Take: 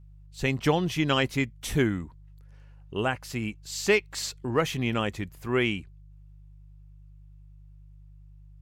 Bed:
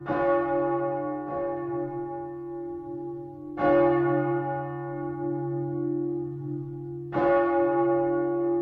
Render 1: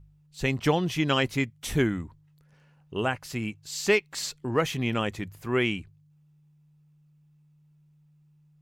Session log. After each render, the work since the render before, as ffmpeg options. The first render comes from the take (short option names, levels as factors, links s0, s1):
-af "bandreject=f=50:t=h:w=4,bandreject=f=100:t=h:w=4"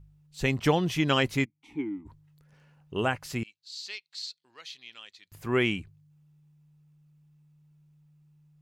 -filter_complex "[0:a]asplit=3[s0][s1][s2];[s0]afade=t=out:st=1.44:d=0.02[s3];[s1]asplit=3[s4][s5][s6];[s4]bandpass=f=300:t=q:w=8,volume=1[s7];[s5]bandpass=f=870:t=q:w=8,volume=0.501[s8];[s6]bandpass=f=2240:t=q:w=8,volume=0.355[s9];[s7][s8][s9]amix=inputs=3:normalize=0,afade=t=in:st=1.44:d=0.02,afade=t=out:st=2.05:d=0.02[s10];[s2]afade=t=in:st=2.05:d=0.02[s11];[s3][s10][s11]amix=inputs=3:normalize=0,asettb=1/sr,asplit=3[s12][s13][s14];[s12]atrim=end=3.434[s15];[s13]atrim=start=3.43:end=5.32,asetpts=PTS-STARTPTS,afade=t=in:d=0.004:c=qsin,afade=t=out:st=1.886:d=0.004:c=qsin,bandpass=f=4200:t=q:w=4.3[s16];[s14]atrim=start=5.316[s17];[s15][s16]acrossfade=d=0.004:c1=hsin:c2=qsin[s18];[s18][s17]acrossfade=d=0.004:c1=qsin:c2=hsin"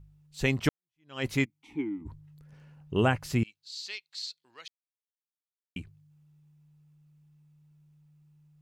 -filter_complex "[0:a]asettb=1/sr,asplit=3[s0][s1][s2];[s0]atrim=end=2.014[s3];[s1]atrim=start=2.01:end=3.8,asetpts=PTS-STARTPTS,afade=t=in:d=0.004:c=qsin,afade=t=out:st=1.786:d=0.004:c=qsin,lowshelf=f=320:g=8.5[s4];[s2]atrim=start=3.796[s5];[s3][s4]acrossfade=d=0.004:c1=hsin:c2=qsin[s6];[s6][s5]acrossfade=d=0.004:c1=qsin:c2=hsin,asplit=4[s7][s8][s9][s10];[s7]atrim=end=0.69,asetpts=PTS-STARTPTS,afade=t=out:st=0.686:d=0.004:c=hsin[s11];[s8]atrim=start=0.69:end=4.68,asetpts=PTS-STARTPTS,afade=t=in:d=0.57:c=exp,afade=t=out:st=3.986:d=0.004:c=hsin[s12];[s9]atrim=start=4.68:end=5.76,asetpts=PTS-STARTPTS,volume=0[s13];[s10]atrim=start=5.76,asetpts=PTS-STARTPTS,afade=t=in:d=0.004:c=hsin[s14];[s11][s12][s13][s14]concat=n=4:v=0:a=1"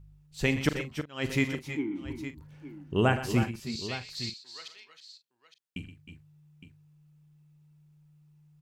-filter_complex "[0:a]asplit=2[s0][s1];[s1]adelay=41,volume=0.237[s2];[s0][s2]amix=inputs=2:normalize=0,aecho=1:1:79|123|312|325|862:0.158|0.224|0.224|0.282|0.211"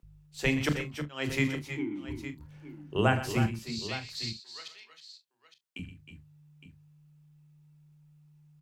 -filter_complex "[0:a]asplit=2[s0][s1];[s1]adelay=27,volume=0.237[s2];[s0][s2]amix=inputs=2:normalize=0,acrossover=split=300[s3][s4];[s3]adelay=30[s5];[s5][s4]amix=inputs=2:normalize=0"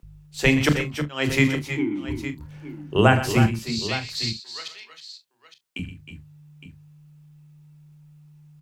-af "volume=2.82,alimiter=limit=0.794:level=0:latency=1"